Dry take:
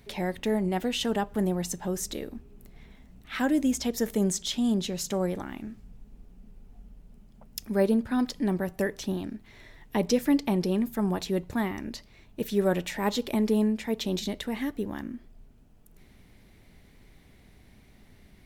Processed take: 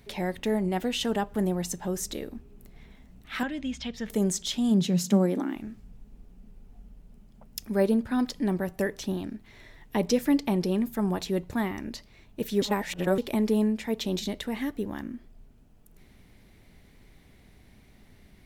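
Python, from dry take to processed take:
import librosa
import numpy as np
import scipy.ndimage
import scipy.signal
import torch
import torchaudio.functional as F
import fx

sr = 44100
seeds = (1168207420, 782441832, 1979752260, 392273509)

y = fx.curve_eq(x, sr, hz=(180.0, 340.0, 3200.0, 13000.0), db=(0, -13, 3, -28), at=(3.43, 4.1))
y = fx.highpass_res(y, sr, hz=fx.line((4.7, 130.0), (5.54, 300.0)), q=4.9, at=(4.7, 5.54), fade=0.02)
y = fx.edit(y, sr, fx.reverse_span(start_s=12.62, length_s=0.56), tone=tone)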